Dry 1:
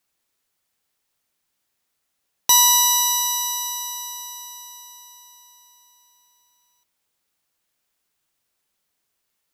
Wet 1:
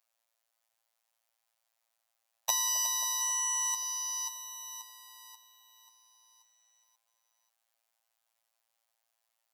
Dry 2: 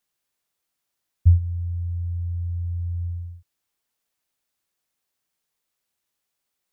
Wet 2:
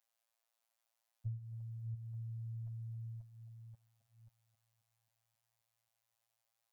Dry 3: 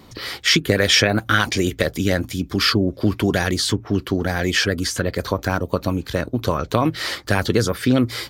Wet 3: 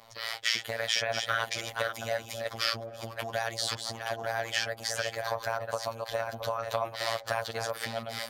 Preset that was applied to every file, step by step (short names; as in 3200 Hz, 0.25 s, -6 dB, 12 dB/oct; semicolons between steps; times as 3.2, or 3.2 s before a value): reverse delay 0.535 s, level -7 dB; compressor 3:1, threshold -21 dBFS; robotiser 114 Hz; resonant low shelf 460 Hz -11 dB, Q 3; on a send: band-limited delay 0.267 s, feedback 67%, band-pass 400 Hz, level -10 dB; on the sum: gain -4.5 dB